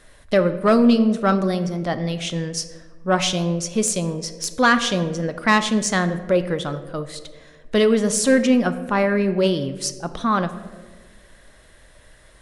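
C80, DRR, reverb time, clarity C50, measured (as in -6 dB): 14.0 dB, 10.0 dB, 1.5 s, 12.5 dB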